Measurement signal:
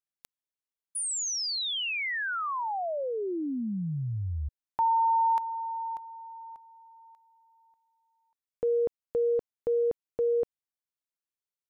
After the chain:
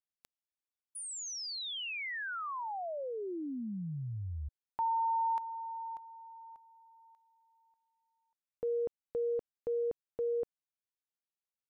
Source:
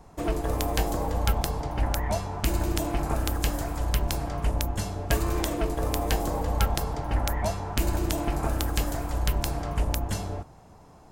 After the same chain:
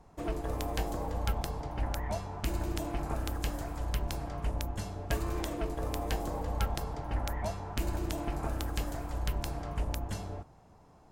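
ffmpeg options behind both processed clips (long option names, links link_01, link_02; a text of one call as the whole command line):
ffmpeg -i in.wav -af "highshelf=frequency=6000:gain=-5,volume=-7dB" out.wav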